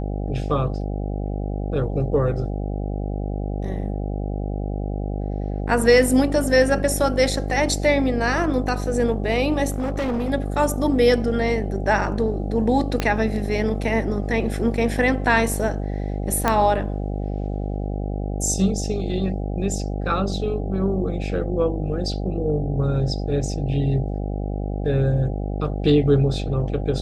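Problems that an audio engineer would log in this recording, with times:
buzz 50 Hz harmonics 16 -26 dBFS
9.70–10.31 s: clipped -20.5 dBFS
13.00 s: pop -8 dBFS
16.48 s: pop -5 dBFS

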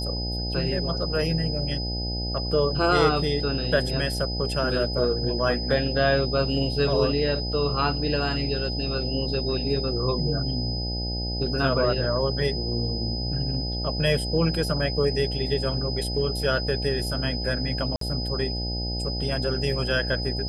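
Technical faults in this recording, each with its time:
buzz 60 Hz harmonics 14 -30 dBFS
whine 5 kHz -31 dBFS
17.96–18.01 s: dropout 53 ms

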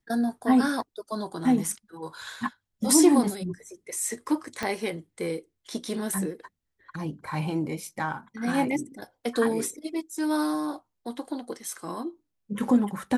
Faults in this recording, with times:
4.63 s: pop -14 dBFS

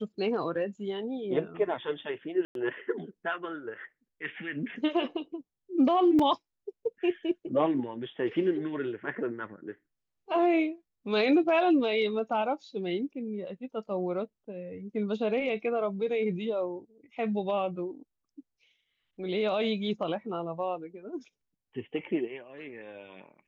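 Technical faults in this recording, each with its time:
2.45–2.55 s: dropout 102 ms
6.19 s: dropout 4.1 ms

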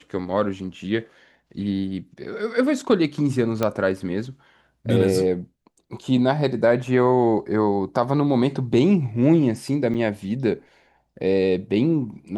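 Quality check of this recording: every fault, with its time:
3.63 s: pop -9 dBFS
9.94–9.95 s: dropout 5.7 ms

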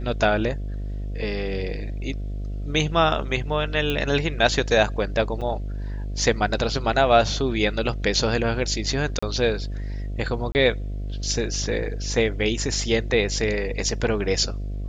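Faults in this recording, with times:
buzz 50 Hz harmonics 14 -29 dBFS
3.90 s: pop -12 dBFS
5.41–5.42 s: dropout 6 ms
9.19–9.22 s: dropout 35 ms
10.52–10.55 s: dropout 29 ms

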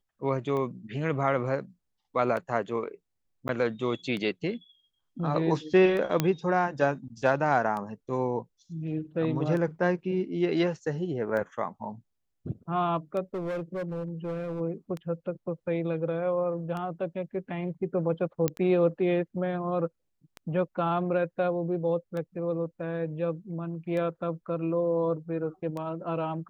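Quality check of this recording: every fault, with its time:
tick 33 1/3 rpm -23 dBFS
3.48–3.49 s: dropout 9.9 ms
6.20 s: pop -10 dBFS
13.34–14.61 s: clipped -29 dBFS
18.48 s: pop -11 dBFS

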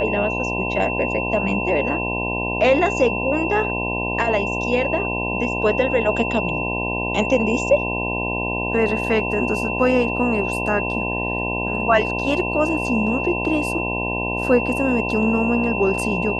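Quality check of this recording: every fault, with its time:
buzz 60 Hz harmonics 17 -26 dBFS
whine 2.7 kHz -25 dBFS

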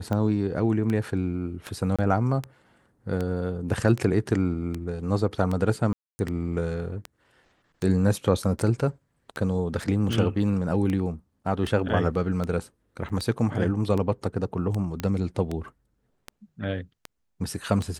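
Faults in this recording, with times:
tick 78 rpm -17 dBFS
1.96–1.99 s: dropout 26 ms
5.93–6.19 s: dropout 260 ms
9.82 s: dropout 3.6 ms
13.09–13.10 s: dropout 7.4 ms
15.00 s: pop -14 dBFS

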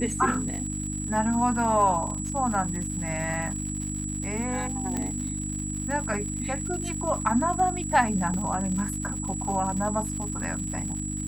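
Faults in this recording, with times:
crackle 170 per s -34 dBFS
hum 50 Hz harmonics 6 -33 dBFS
whine 7.8 kHz -34 dBFS
4.97 s: pop -17 dBFS
8.34 s: dropout 2.3 ms

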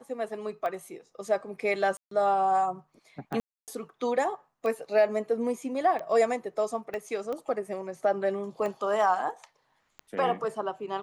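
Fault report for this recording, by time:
tick 45 rpm -23 dBFS
1.97–2.11 s: dropout 143 ms
3.40–3.68 s: dropout 278 ms
6.94 s: pop -23 dBFS

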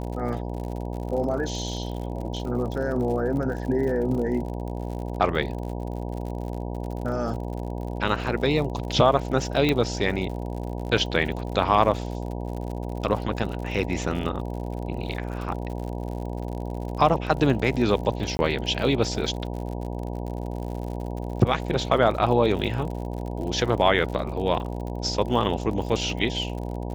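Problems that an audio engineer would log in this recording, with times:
buzz 60 Hz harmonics 16 -31 dBFS
crackle 65 per s -33 dBFS
9.69 s: pop -10 dBFS
18.37–18.39 s: dropout 20 ms

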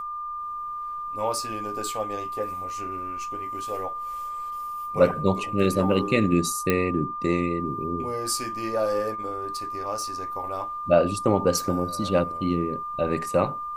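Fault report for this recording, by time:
whine 1.2 kHz -30 dBFS
6.70 s: pop -8 dBFS

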